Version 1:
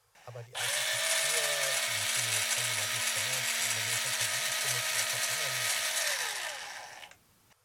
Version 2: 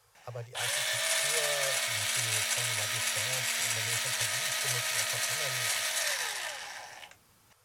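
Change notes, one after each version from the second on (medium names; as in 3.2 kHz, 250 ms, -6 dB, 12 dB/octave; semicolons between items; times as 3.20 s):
speech +4.0 dB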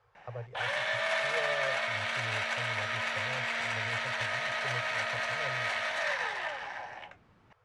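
background +5.5 dB; master: add low-pass 1.9 kHz 12 dB/octave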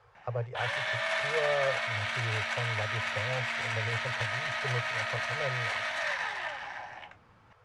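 speech +7.5 dB; background: add peaking EQ 480 Hz -12 dB 0.31 oct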